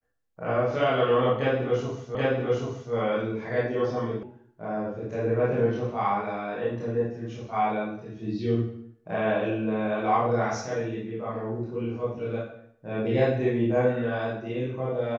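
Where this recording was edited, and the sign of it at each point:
2.15 s: repeat of the last 0.78 s
4.23 s: sound stops dead

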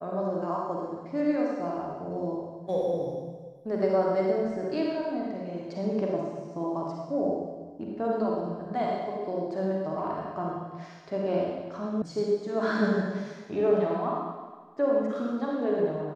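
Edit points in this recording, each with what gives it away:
12.02 s: sound stops dead

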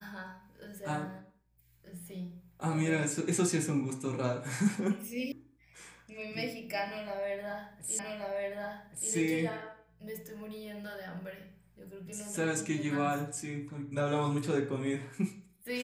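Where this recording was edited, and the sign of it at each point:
5.32 s: sound stops dead
7.99 s: repeat of the last 1.13 s

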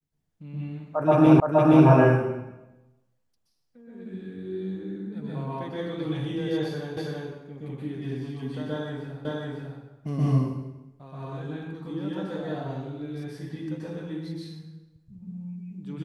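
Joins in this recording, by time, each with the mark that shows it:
1.40 s: repeat of the last 0.47 s
6.97 s: repeat of the last 0.33 s
9.25 s: repeat of the last 0.55 s

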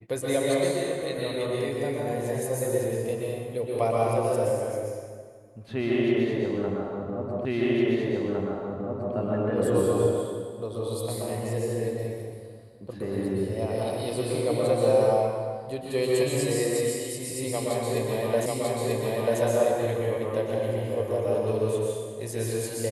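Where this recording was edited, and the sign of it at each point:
7.45 s: repeat of the last 1.71 s
18.46 s: repeat of the last 0.94 s

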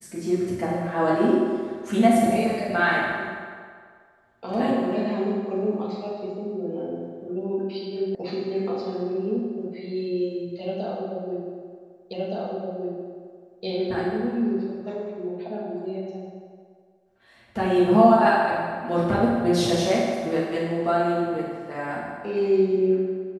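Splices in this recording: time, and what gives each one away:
8.15 s: sound stops dead
12.13 s: repeat of the last 1.52 s

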